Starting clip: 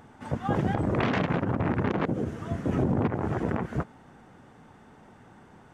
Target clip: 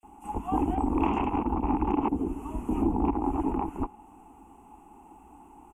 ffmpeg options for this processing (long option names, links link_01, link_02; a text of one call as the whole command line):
ffmpeg -i in.wav -filter_complex "[0:a]firequalizer=gain_entry='entry(110,0);entry(170,-18);entry(330,8);entry(620,-15);entry(890,10);entry(1700,-21);entry(2700,4);entry(4000,-26);entry(7300,3);entry(11000,11)':delay=0.05:min_phase=1,acrossover=split=3400[link_01][link_02];[link_01]adelay=30[link_03];[link_03][link_02]amix=inputs=2:normalize=0,afreqshift=-47,adynamicequalizer=threshold=0.00251:dfrequency=3800:dqfactor=0.7:tfrequency=3800:tqfactor=0.7:attack=5:release=100:ratio=0.375:range=3:mode=cutabove:tftype=highshelf" out.wav